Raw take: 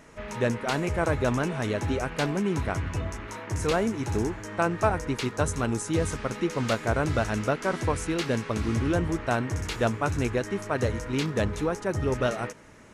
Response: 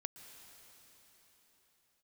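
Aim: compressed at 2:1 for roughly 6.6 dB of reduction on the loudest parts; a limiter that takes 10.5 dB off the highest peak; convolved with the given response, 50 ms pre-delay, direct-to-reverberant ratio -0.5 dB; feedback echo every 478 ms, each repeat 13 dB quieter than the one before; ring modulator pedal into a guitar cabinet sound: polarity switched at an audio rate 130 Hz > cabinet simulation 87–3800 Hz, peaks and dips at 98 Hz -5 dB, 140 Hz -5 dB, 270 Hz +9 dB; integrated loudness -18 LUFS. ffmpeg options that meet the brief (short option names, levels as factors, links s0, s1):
-filter_complex "[0:a]acompressor=threshold=0.0251:ratio=2,alimiter=level_in=1.5:limit=0.0631:level=0:latency=1,volume=0.668,aecho=1:1:478|956|1434:0.224|0.0493|0.0108,asplit=2[s0][s1];[1:a]atrim=start_sample=2205,adelay=50[s2];[s1][s2]afir=irnorm=-1:irlink=0,volume=1.5[s3];[s0][s3]amix=inputs=2:normalize=0,aeval=exprs='val(0)*sgn(sin(2*PI*130*n/s))':c=same,highpass=87,equalizer=f=98:t=q:w=4:g=-5,equalizer=f=140:t=q:w=4:g=-5,equalizer=f=270:t=q:w=4:g=9,lowpass=f=3800:w=0.5412,lowpass=f=3800:w=1.3066,volume=5.31"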